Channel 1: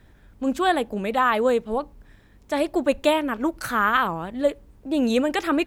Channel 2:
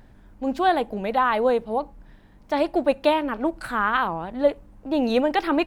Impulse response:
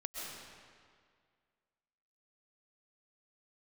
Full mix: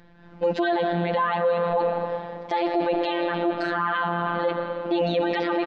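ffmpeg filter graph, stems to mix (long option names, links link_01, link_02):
-filter_complex "[0:a]acompressor=threshold=-23dB:ratio=6,volume=0.5dB[link_01];[1:a]highpass=frequency=140:width=0.5412,highpass=frequency=140:width=1.3066,dynaudnorm=framelen=180:gausssize=3:maxgain=15dB,volume=-1,adelay=0.9,volume=0dB,asplit=2[link_02][link_03];[link_03]volume=-5dB[link_04];[2:a]atrim=start_sample=2205[link_05];[link_04][link_05]afir=irnorm=-1:irlink=0[link_06];[link_01][link_02][link_06]amix=inputs=3:normalize=0,lowpass=frequency=4600:width=0.5412,lowpass=frequency=4600:width=1.3066,afftfilt=real='hypot(re,im)*cos(PI*b)':imag='0':win_size=1024:overlap=0.75,alimiter=limit=-13dB:level=0:latency=1:release=12"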